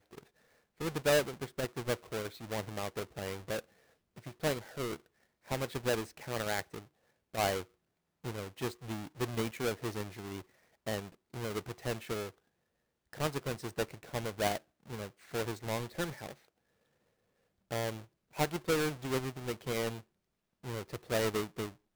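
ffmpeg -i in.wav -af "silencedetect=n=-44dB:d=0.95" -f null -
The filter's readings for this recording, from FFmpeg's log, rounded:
silence_start: 16.32
silence_end: 17.71 | silence_duration: 1.39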